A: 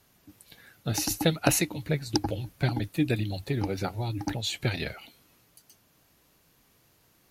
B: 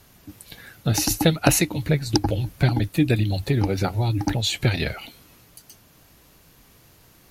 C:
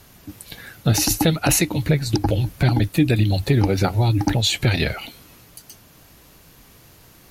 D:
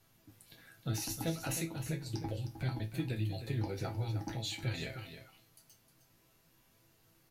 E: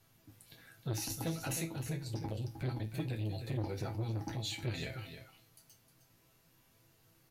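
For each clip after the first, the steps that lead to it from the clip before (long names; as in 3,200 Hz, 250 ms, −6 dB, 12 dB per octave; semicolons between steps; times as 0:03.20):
low-shelf EQ 92 Hz +7.5 dB; in parallel at +1 dB: downward compressor, threshold −33 dBFS, peak gain reduction 15.5 dB; on the sum: level +3 dB
brickwall limiter −12 dBFS, peak gain reduction 10 dB; level +4.5 dB
resonators tuned to a chord A2 minor, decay 0.24 s; single-tap delay 310 ms −10.5 dB; level −7 dB
on a send at −22.5 dB: convolution reverb RT60 0.55 s, pre-delay 3 ms; on the sum: saturating transformer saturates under 370 Hz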